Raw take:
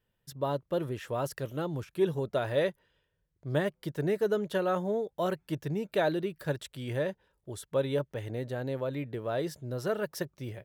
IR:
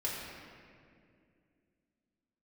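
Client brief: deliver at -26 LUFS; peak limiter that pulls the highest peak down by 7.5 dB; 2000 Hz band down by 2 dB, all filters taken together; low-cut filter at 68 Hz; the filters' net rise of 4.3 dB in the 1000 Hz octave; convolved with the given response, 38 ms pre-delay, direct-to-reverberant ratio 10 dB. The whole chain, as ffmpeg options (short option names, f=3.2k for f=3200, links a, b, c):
-filter_complex "[0:a]highpass=68,equalizer=f=1k:t=o:g=7.5,equalizer=f=2k:t=o:g=-6,alimiter=limit=-21dB:level=0:latency=1,asplit=2[a][b];[1:a]atrim=start_sample=2205,adelay=38[c];[b][c]afir=irnorm=-1:irlink=0,volume=-14.5dB[d];[a][d]amix=inputs=2:normalize=0,volume=7dB"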